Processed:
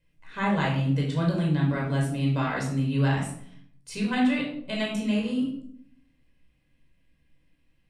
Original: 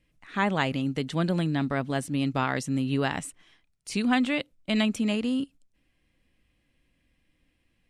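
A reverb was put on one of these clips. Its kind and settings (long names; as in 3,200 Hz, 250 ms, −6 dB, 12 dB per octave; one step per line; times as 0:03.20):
rectangular room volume 1,000 cubic metres, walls furnished, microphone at 5.1 metres
level −7.5 dB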